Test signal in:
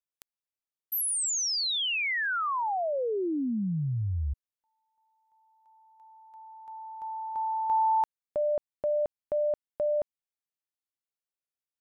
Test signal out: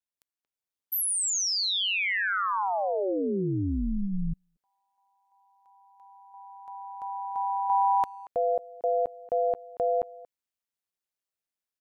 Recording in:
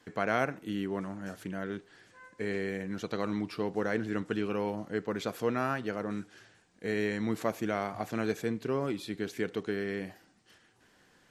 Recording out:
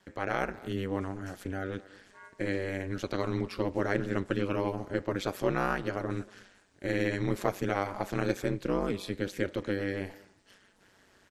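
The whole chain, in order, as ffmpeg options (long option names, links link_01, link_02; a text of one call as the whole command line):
ffmpeg -i in.wav -filter_complex "[0:a]asplit=2[link_01][link_02];[link_02]adelay=230,highpass=300,lowpass=3400,asoftclip=type=hard:threshold=-21.5dB,volume=-20dB[link_03];[link_01][link_03]amix=inputs=2:normalize=0,dynaudnorm=framelen=390:gausssize=3:maxgain=4.5dB,aeval=exprs='val(0)*sin(2*PI*96*n/s)':channel_layout=same" out.wav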